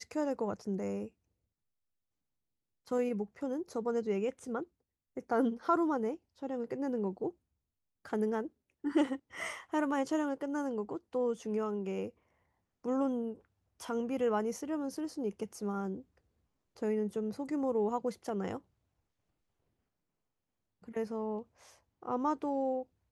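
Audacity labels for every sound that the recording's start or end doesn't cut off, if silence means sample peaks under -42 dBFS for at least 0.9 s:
2.910000	18.580000	sound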